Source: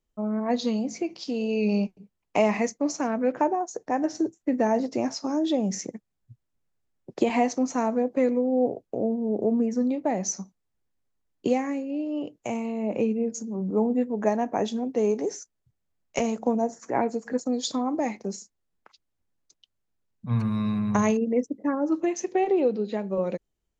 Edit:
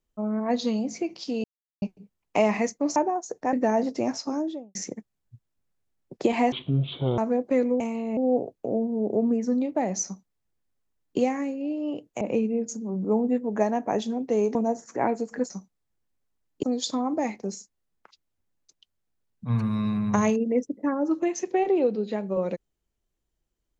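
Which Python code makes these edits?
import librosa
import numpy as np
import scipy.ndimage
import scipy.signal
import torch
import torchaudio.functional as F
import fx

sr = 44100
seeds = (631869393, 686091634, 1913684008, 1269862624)

y = fx.studio_fade_out(x, sr, start_s=5.21, length_s=0.51)
y = fx.edit(y, sr, fx.silence(start_s=1.44, length_s=0.38),
    fx.cut(start_s=2.96, length_s=0.45),
    fx.cut(start_s=3.98, length_s=0.52),
    fx.speed_span(start_s=7.49, length_s=0.35, speed=0.53),
    fx.duplicate(start_s=10.34, length_s=1.13, to_s=17.44),
    fx.move(start_s=12.5, length_s=0.37, to_s=8.46),
    fx.cut(start_s=15.21, length_s=1.28), tone=tone)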